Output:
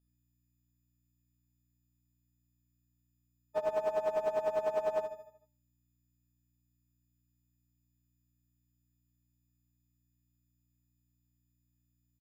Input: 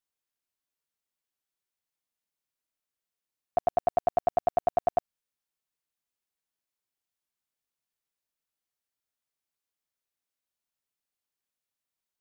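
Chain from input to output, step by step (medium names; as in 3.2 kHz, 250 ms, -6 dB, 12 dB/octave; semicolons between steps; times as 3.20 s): partials quantised in pitch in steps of 6 st; gate -59 dBFS, range -8 dB; hum 60 Hz, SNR 34 dB; de-hum 67.46 Hz, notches 25; on a send: feedback delay 76 ms, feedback 47%, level -7 dB; on the sum: loudspeaker Doppler distortion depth 0.21 ms; trim -7.5 dB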